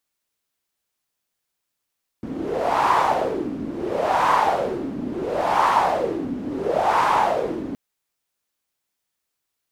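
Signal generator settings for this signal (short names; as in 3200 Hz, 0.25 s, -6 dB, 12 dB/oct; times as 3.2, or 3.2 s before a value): wind-like swept noise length 5.52 s, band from 260 Hz, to 1000 Hz, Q 4.5, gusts 4, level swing 11.5 dB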